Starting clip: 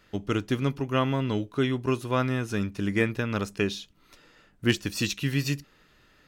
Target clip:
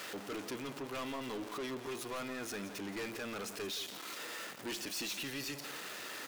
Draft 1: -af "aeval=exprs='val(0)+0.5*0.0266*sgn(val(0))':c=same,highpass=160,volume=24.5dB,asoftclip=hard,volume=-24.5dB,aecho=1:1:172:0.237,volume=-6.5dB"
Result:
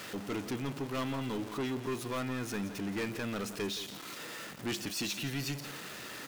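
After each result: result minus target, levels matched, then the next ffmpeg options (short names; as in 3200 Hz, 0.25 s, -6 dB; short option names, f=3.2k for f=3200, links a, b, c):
125 Hz band +9.0 dB; overloaded stage: distortion -3 dB
-af "aeval=exprs='val(0)+0.5*0.0266*sgn(val(0))':c=same,highpass=340,volume=24.5dB,asoftclip=hard,volume=-24.5dB,aecho=1:1:172:0.237,volume=-6.5dB"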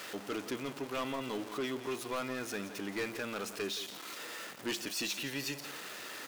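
overloaded stage: distortion -4 dB
-af "aeval=exprs='val(0)+0.5*0.0266*sgn(val(0))':c=same,highpass=340,volume=31dB,asoftclip=hard,volume=-31dB,aecho=1:1:172:0.237,volume=-6.5dB"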